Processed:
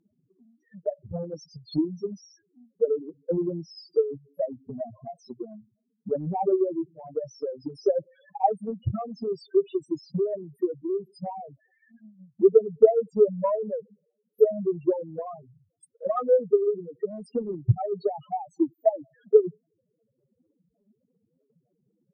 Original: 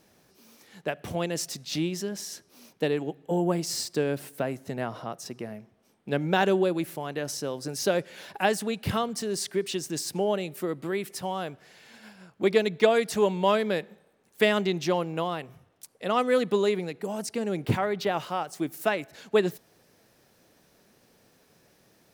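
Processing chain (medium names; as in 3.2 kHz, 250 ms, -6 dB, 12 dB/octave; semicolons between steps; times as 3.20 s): loudest bins only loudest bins 2; low-pass that closes with the level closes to 1.9 kHz, closed at -22.5 dBFS; transient shaper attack +10 dB, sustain -2 dB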